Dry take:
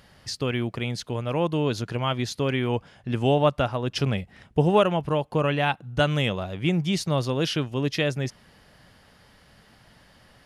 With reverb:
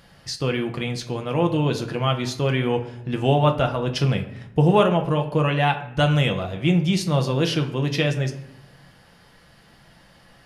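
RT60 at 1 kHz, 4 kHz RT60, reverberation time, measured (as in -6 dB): 0.70 s, 0.50 s, 0.75 s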